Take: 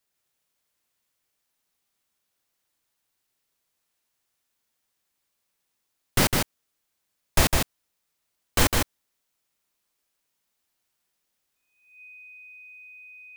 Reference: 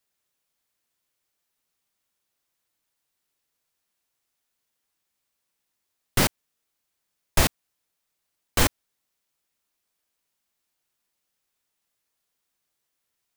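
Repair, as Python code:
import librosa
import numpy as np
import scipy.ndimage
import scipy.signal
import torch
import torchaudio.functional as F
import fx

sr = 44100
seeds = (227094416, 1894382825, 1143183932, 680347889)

y = fx.notch(x, sr, hz=2500.0, q=30.0)
y = fx.fix_echo_inverse(y, sr, delay_ms=156, level_db=-3.5)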